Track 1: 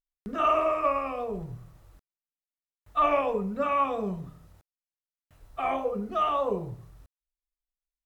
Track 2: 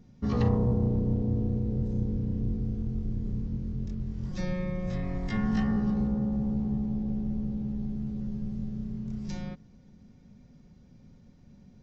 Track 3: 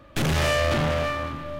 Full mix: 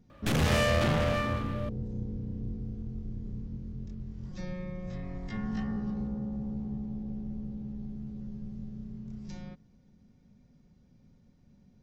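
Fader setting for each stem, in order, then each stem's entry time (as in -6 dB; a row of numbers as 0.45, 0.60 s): off, -6.5 dB, -4.5 dB; off, 0.00 s, 0.10 s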